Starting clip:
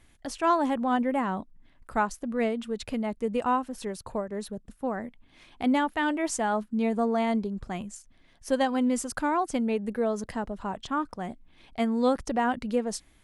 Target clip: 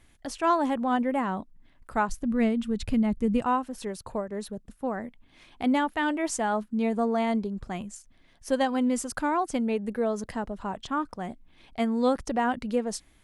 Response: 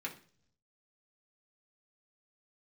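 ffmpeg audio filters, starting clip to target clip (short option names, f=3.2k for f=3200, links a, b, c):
-filter_complex "[0:a]asplit=3[a][b][c];[a]afade=t=out:st=2.08:d=0.02[d];[b]asubboost=boost=6:cutoff=230,afade=t=in:st=2.08:d=0.02,afade=t=out:st=3.42:d=0.02[e];[c]afade=t=in:st=3.42:d=0.02[f];[d][e][f]amix=inputs=3:normalize=0"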